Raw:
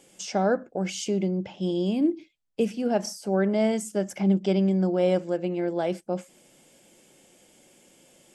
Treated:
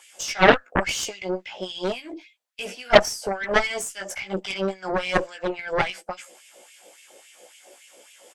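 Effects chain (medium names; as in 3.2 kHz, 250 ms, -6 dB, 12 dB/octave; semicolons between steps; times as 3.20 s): doubling 16 ms -3.5 dB; LFO high-pass sine 3.6 Hz 470–2500 Hz; Chebyshev shaper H 3 -22 dB, 4 -20 dB, 6 -14 dB, 7 -12 dB, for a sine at -5.5 dBFS; trim +4.5 dB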